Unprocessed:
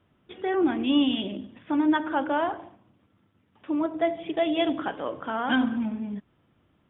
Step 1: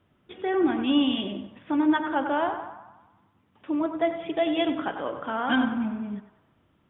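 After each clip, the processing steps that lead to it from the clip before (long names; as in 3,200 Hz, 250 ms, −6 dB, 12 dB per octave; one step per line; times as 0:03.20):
feedback echo with a band-pass in the loop 96 ms, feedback 60%, band-pass 1,100 Hz, level −7.5 dB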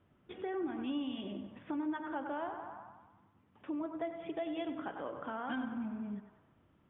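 downward compressor 2.5 to 1, threshold −37 dBFS, peak gain reduction 13 dB
high-frequency loss of the air 260 metres
level −2.5 dB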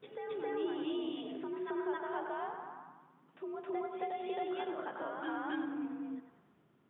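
frequency shifter +61 Hz
backwards echo 269 ms −3.5 dB
level −1 dB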